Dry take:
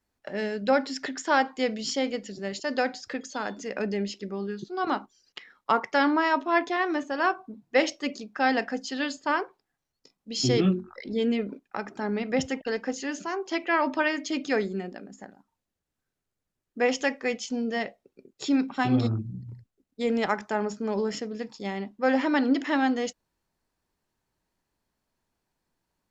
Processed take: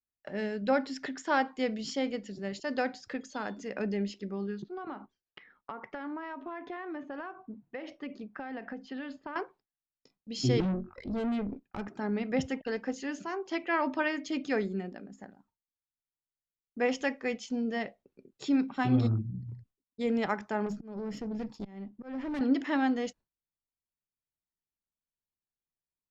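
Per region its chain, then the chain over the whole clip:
4.62–9.36 LPF 2500 Hz + compressor 10:1, threshold -31 dBFS
10.6–11.88 low shelf 440 Hz +8.5 dB + tube stage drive 26 dB, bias 0.6
20.66–22.41 low shelf 400 Hz +9.5 dB + auto swell 0.564 s + tube stage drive 28 dB, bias 0.3
whole clip: gate with hold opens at -51 dBFS; tone controls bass +5 dB, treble -5 dB; gain -5 dB

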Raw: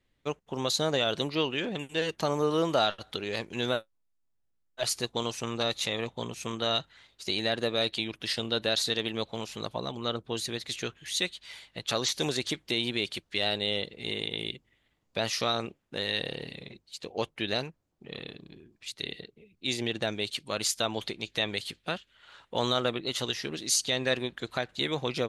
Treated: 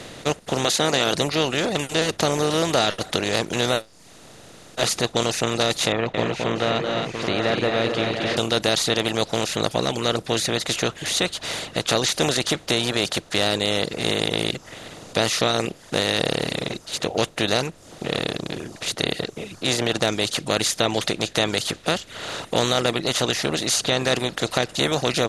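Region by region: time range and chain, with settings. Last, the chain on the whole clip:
0.64–1.13 spectral limiter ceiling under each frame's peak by 12 dB + HPF 190 Hz
5.92–8.37 Chebyshev low-pass 2300 Hz, order 3 + tapped delay 0.22/0.267/0.688/0.779 s -7.5/-8.5/-14.5/-11 dB + mismatched tape noise reduction encoder only
whole clip: per-bin compression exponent 0.4; low shelf 200 Hz +8 dB; reverb removal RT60 0.56 s; gain +1.5 dB

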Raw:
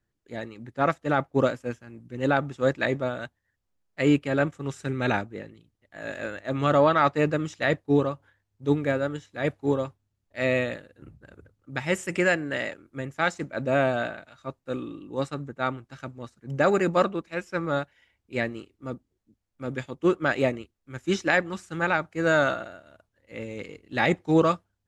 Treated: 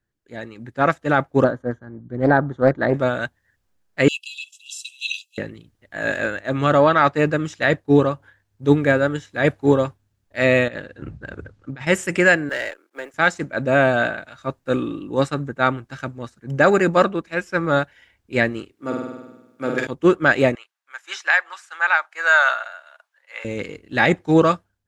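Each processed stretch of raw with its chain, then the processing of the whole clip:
1.44–2.94 running mean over 17 samples + Doppler distortion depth 0.3 ms
4.08–5.38 Chebyshev high-pass 2600 Hz, order 10 + comb 1.5 ms, depth 97%
10.68–11.87 LPF 5900 Hz + negative-ratio compressor -41 dBFS
12.49–13.14 G.711 law mismatch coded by A + HPF 360 Hz 24 dB/oct + tube stage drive 23 dB, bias 0.25
18.72–19.87 HPF 220 Hz + overloaded stage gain 22 dB + flutter echo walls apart 8.5 m, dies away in 1 s
20.55–23.45 HPF 840 Hz 24 dB/oct + high shelf 4900 Hz -6.5 dB
whole clip: bell 1600 Hz +5 dB 0.24 oct; AGC gain up to 12 dB; gain -1 dB

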